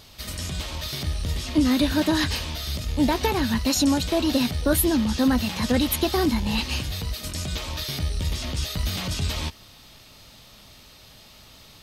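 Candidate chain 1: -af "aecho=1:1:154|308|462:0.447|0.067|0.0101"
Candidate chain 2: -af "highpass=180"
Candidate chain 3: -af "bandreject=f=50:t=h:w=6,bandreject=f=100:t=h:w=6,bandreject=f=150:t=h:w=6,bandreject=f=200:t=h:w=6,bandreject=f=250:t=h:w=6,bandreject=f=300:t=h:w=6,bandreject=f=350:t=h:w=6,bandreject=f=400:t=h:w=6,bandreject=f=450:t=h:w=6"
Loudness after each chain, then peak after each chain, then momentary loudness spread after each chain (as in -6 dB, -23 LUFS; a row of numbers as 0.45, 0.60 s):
-23.5, -25.5, -25.0 LUFS; -8.5, -10.0, -9.0 dBFS; 10, 11, 9 LU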